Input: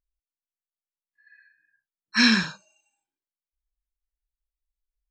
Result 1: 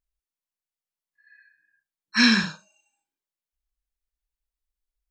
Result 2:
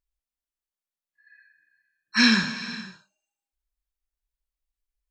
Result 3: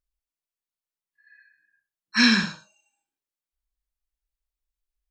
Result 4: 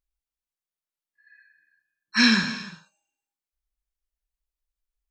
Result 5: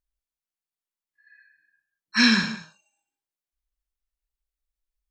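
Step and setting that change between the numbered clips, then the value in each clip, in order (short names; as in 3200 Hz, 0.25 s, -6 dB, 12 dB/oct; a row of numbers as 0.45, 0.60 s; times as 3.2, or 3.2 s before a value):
non-linear reverb, gate: 90, 540, 140, 360, 230 ms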